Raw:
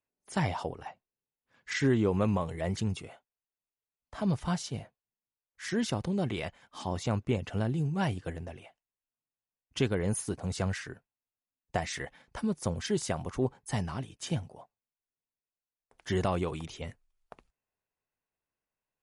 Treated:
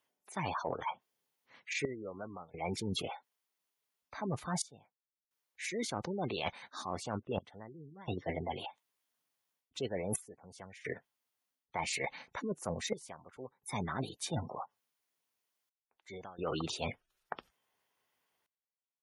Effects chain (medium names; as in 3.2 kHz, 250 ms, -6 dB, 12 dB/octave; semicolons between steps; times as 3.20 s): trance gate "xxxxxxxx...x" 65 bpm -24 dB; in parallel at +1.5 dB: gain riding within 3 dB 2 s; on the sum: high-pass 330 Hz 6 dB/octave; band-stop 6.5 kHz, Q 14; formant shift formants +3 st; spectral gate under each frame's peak -20 dB strong; reverse; compression 20:1, threshold -36 dBFS, peak gain reduction 18 dB; reverse; trim +3.5 dB